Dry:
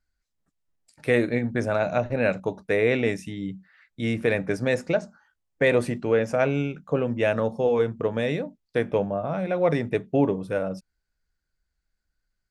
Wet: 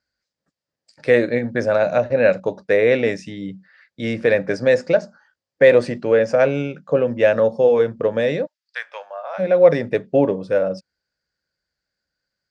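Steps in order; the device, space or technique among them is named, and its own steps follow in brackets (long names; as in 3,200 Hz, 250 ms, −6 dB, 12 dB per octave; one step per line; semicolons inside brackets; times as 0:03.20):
0:08.45–0:09.38: high-pass filter 1,500 Hz → 700 Hz 24 dB per octave
car door speaker (loudspeaker in its box 110–7,500 Hz, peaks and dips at 540 Hz +10 dB, 1,700 Hz +5 dB, 4,800 Hz +9 dB)
level +2 dB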